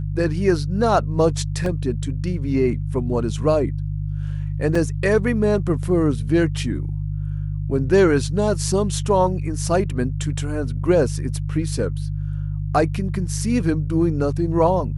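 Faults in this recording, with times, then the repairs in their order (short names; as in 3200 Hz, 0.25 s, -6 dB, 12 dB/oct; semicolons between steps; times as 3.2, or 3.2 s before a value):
hum 50 Hz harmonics 3 -25 dBFS
1.66 gap 2.5 ms
4.75 gap 4 ms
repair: de-hum 50 Hz, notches 3; interpolate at 1.66, 2.5 ms; interpolate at 4.75, 4 ms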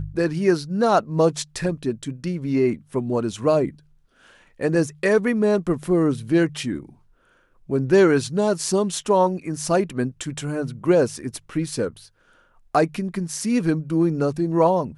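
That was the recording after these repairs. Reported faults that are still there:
none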